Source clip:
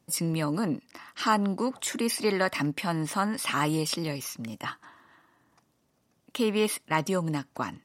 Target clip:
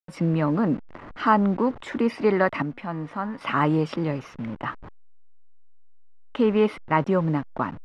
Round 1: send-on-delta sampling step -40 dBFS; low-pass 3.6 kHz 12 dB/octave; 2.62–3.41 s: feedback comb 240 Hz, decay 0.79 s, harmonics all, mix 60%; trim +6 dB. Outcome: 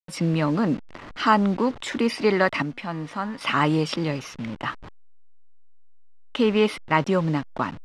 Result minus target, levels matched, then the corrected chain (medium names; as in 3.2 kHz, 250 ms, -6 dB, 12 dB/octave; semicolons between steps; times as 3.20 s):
4 kHz band +9.0 dB
send-on-delta sampling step -40 dBFS; low-pass 1.7 kHz 12 dB/octave; 2.62–3.41 s: feedback comb 240 Hz, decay 0.79 s, harmonics all, mix 60%; trim +6 dB